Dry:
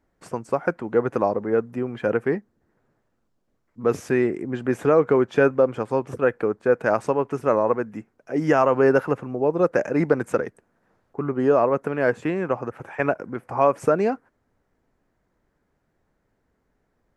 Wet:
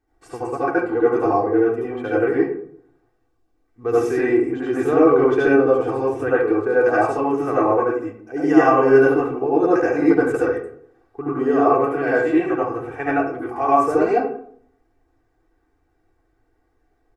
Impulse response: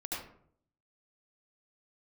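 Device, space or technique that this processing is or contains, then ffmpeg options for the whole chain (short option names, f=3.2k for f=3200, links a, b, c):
microphone above a desk: -filter_complex "[0:a]aecho=1:1:2.6:0.86[a];[1:a]atrim=start_sample=2205[b];[a][b]afir=irnorm=-1:irlink=0,volume=-1dB"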